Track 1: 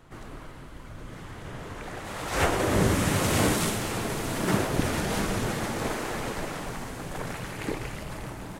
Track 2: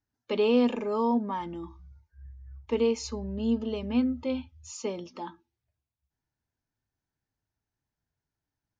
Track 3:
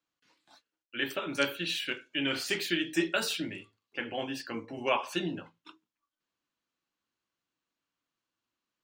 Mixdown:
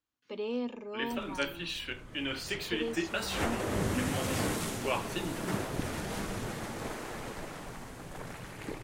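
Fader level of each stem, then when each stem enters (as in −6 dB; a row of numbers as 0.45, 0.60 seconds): −8.5, −11.5, −4.5 decibels; 1.00, 0.00, 0.00 seconds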